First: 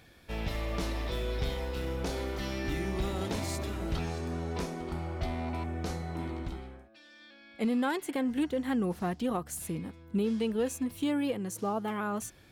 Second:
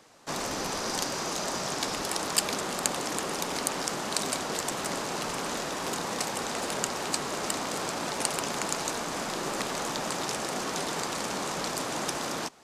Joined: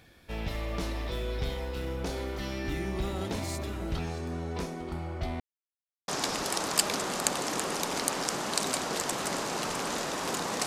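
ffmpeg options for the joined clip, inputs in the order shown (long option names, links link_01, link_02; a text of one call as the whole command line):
ffmpeg -i cue0.wav -i cue1.wav -filter_complex "[0:a]apad=whole_dur=10.66,atrim=end=10.66,asplit=2[link_01][link_02];[link_01]atrim=end=5.4,asetpts=PTS-STARTPTS,afade=type=out:start_time=5.396:duration=0.004:curve=hsin[link_03];[link_02]atrim=start=5.4:end=6.08,asetpts=PTS-STARTPTS,volume=0[link_04];[1:a]atrim=start=1.67:end=6.25,asetpts=PTS-STARTPTS,afade=type=in:duration=0.004:curve=hsin[link_05];[link_03][link_04][link_05]concat=n=3:v=0:a=1" out.wav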